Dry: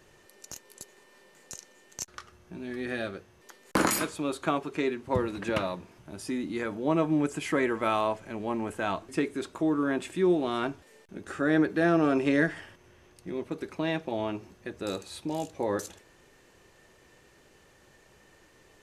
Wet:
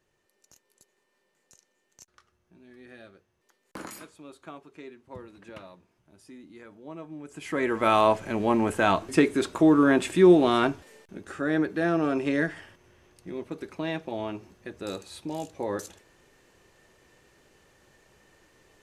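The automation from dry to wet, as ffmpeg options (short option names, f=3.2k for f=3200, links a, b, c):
-af "volume=8dB,afade=t=in:st=7.25:d=0.3:silence=0.223872,afade=t=in:st=7.55:d=0.56:silence=0.298538,afade=t=out:st=10.49:d=0.76:silence=0.334965"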